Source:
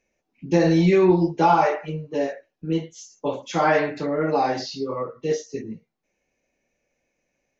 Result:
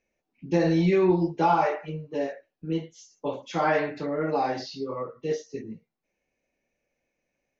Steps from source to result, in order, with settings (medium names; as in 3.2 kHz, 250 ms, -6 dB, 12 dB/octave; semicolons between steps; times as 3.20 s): low-pass 5.7 kHz 12 dB/octave; trim -4.5 dB